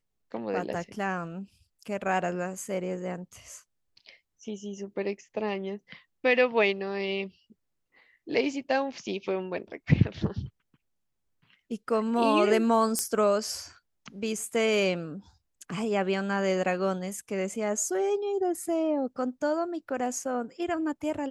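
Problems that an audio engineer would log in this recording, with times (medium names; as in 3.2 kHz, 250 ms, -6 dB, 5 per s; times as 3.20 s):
12.99 s: pop -12 dBFS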